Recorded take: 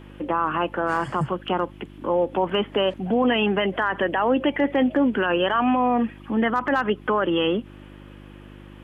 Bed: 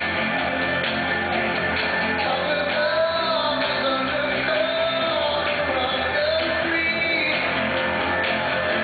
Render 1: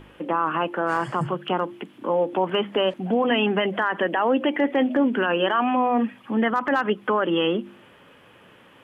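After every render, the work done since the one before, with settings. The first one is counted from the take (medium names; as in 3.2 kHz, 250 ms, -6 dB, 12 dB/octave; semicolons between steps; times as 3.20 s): de-hum 50 Hz, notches 7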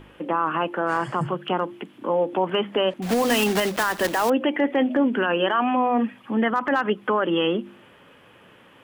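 3.02–4.32 s: block-companded coder 3-bit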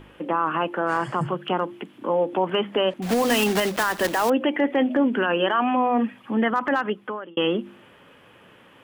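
6.69–7.37 s: fade out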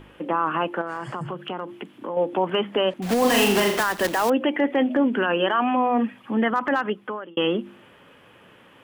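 0.81–2.17 s: compression 3:1, threshold -28 dBFS; 3.18–3.81 s: flutter echo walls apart 6.8 m, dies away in 0.63 s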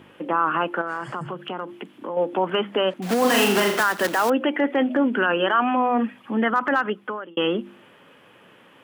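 high-pass 130 Hz; dynamic bell 1.4 kHz, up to +6 dB, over -41 dBFS, Q 3.6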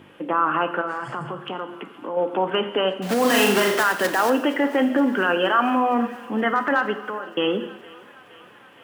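thinning echo 468 ms, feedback 73%, high-pass 440 Hz, level -21.5 dB; gated-style reverb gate 320 ms falling, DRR 8 dB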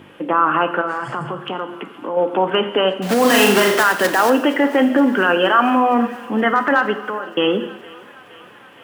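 trim +5 dB; peak limiter -1 dBFS, peak gain reduction 0.5 dB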